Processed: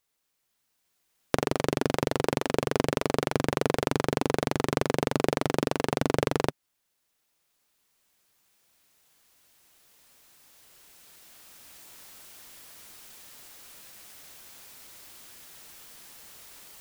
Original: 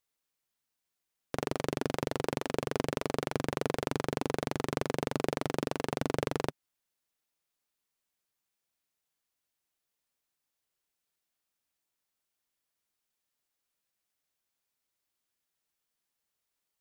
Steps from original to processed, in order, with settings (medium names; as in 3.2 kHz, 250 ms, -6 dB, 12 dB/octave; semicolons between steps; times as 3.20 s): recorder AGC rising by 5.5 dB/s; trim +6 dB